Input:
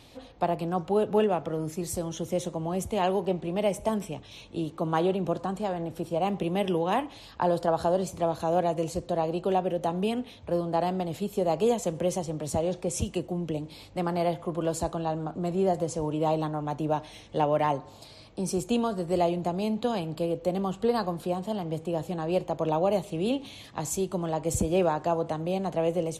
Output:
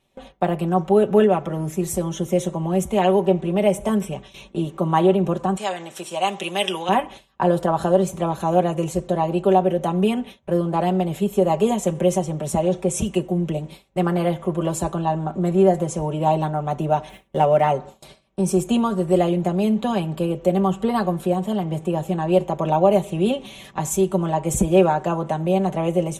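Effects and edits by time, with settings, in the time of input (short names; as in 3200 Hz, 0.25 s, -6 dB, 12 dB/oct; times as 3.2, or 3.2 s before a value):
5.57–6.89 weighting filter ITU-R 468
17.09–17.61 median filter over 9 samples
whole clip: gate with hold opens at -35 dBFS; bell 4600 Hz -12 dB 0.4 oct; comb 5.2 ms, depth 74%; gain +5.5 dB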